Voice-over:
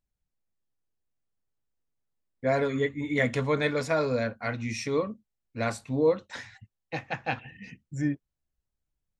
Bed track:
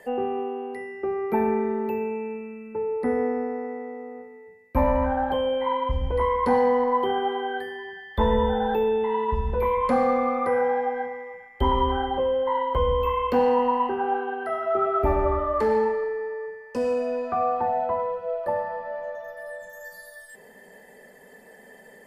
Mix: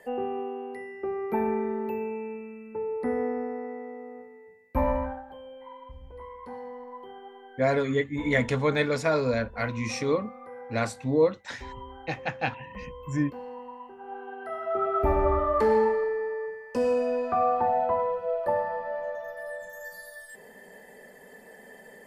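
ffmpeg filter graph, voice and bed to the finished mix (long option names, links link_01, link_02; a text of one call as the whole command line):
ffmpeg -i stem1.wav -i stem2.wav -filter_complex "[0:a]adelay=5150,volume=1.5dB[link_01];[1:a]volume=16dB,afade=type=out:start_time=4.91:duration=0.32:silence=0.158489,afade=type=in:start_time=13.98:duration=1.4:silence=0.1[link_02];[link_01][link_02]amix=inputs=2:normalize=0" out.wav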